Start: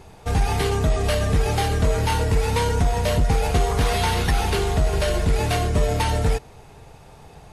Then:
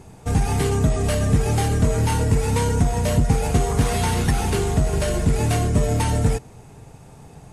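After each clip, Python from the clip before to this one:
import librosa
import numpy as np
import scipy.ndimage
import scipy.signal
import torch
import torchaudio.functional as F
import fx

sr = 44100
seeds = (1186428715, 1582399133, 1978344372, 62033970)

y = fx.graphic_eq_10(x, sr, hz=(125, 250, 4000, 8000), db=(7, 7, -4, 8))
y = y * 10.0 ** (-2.5 / 20.0)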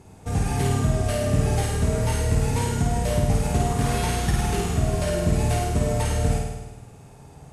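y = fx.cheby_harmonics(x, sr, harmonics=(3, 5), levels_db=(-29, -37), full_scale_db=-5.5)
y = fx.room_flutter(y, sr, wall_m=8.9, rt60_s=1.1)
y = y * 10.0 ** (-5.0 / 20.0)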